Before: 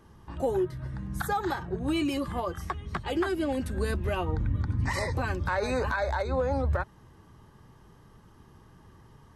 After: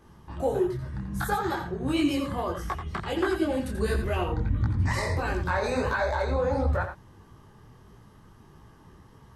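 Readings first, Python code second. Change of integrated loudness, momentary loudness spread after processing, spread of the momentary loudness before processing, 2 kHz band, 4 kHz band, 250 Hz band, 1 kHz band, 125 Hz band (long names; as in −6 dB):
+2.0 dB, 7 LU, 6 LU, +2.0 dB, +2.0 dB, +2.5 dB, +1.5 dB, +2.0 dB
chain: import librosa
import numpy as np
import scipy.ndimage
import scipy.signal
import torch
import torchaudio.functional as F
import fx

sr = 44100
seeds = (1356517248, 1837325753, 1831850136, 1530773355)

y = x + 10.0 ** (-8.0 / 20.0) * np.pad(x, (int(86 * sr / 1000.0), 0))[:len(x)]
y = fx.detune_double(y, sr, cents=52)
y = y * 10.0 ** (5.0 / 20.0)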